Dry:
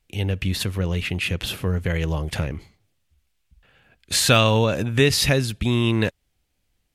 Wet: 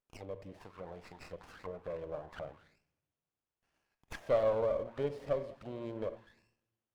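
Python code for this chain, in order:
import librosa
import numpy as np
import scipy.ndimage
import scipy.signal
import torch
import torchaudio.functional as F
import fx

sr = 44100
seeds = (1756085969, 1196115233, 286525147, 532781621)

y = fx.low_shelf(x, sr, hz=120.0, db=5.5)
y = fx.room_shoebox(y, sr, seeds[0], volume_m3=690.0, walls='mixed', distance_m=0.51)
y = fx.auto_wah(y, sr, base_hz=580.0, top_hz=4400.0, q=5.3, full_db=-16.5, direction='down')
y = fx.running_max(y, sr, window=9)
y = F.gain(torch.from_numpy(y), -4.5).numpy()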